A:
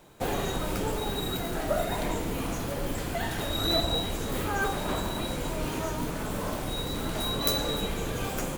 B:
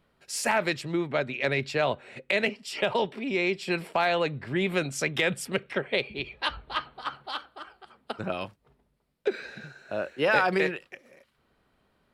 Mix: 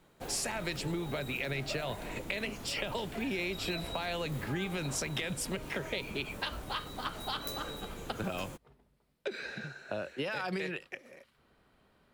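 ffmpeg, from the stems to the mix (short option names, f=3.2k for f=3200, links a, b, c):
-filter_complex "[0:a]volume=-12.5dB[a];[1:a]alimiter=limit=-18.5dB:level=0:latency=1,acrossover=split=180|3000[b][c][d];[c]acompressor=threshold=-34dB:ratio=6[e];[b][e][d]amix=inputs=3:normalize=0,volume=1.5dB[f];[a][f]amix=inputs=2:normalize=0,acompressor=threshold=-31dB:ratio=6"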